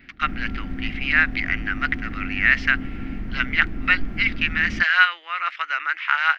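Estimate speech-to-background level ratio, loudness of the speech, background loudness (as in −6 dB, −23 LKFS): 11.5 dB, −21.5 LKFS, −33.0 LKFS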